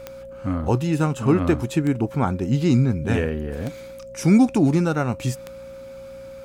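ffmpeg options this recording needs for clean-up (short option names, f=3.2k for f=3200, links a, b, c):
-af "adeclick=t=4,bandreject=f=59:t=h:w=4,bandreject=f=118:t=h:w=4,bandreject=f=177:t=h:w=4,bandreject=f=236:t=h:w=4,bandreject=f=540:w=30"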